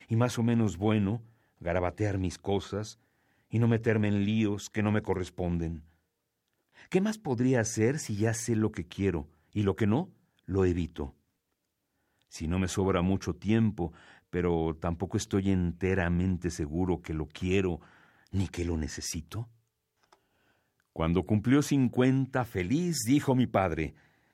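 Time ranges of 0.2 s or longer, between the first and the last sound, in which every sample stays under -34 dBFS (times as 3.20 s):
1.17–1.65 s
2.90–3.53 s
5.76–6.92 s
9.21–9.56 s
10.04–10.49 s
11.06–12.35 s
13.87–14.34 s
17.76–18.34 s
19.42–20.96 s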